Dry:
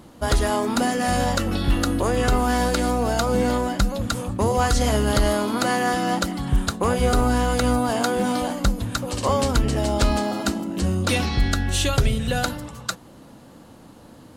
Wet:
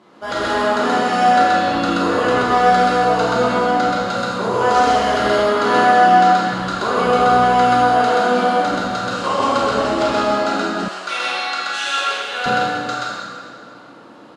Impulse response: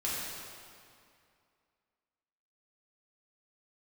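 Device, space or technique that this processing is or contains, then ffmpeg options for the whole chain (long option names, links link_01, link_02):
station announcement: -filter_complex "[0:a]highpass=300,lowpass=4300,equalizer=frequency=1300:width_type=o:width=0.43:gain=4,aecho=1:1:32.07|128.3:0.282|0.891[link_01];[1:a]atrim=start_sample=2205[link_02];[link_01][link_02]afir=irnorm=-1:irlink=0,asettb=1/sr,asplit=3[link_03][link_04][link_05];[link_03]atrim=end=10.884[link_06];[link_04]atrim=start=10.88:end=12.46,asetpts=PTS-STARTPTS,afade=type=in:duration=0.004:curve=qsin,afade=type=out:start_time=1.576:duration=0.004:curve=qsin,highpass=810[link_07];[link_05]atrim=start=12.456[link_08];[link_06][link_07]acrossfade=duration=0.004:curve1=hsin:curve2=qsin[link_09];[link_09][link_08]acrossfade=duration=0.004:curve1=qsin:curve2=hsin,volume=-2dB"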